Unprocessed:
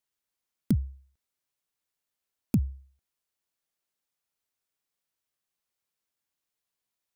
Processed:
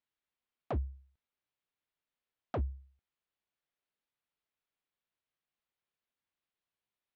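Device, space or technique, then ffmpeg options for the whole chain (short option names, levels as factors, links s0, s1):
synthesiser wavefolder: -af "aeval=exprs='0.0596*(abs(mod(val(0)/0.0596+3,4)-2)-1)':c=same,lowpass=f=3800:w=0.5412,lowpass=f=3800:w=1.3066,volume=0.75"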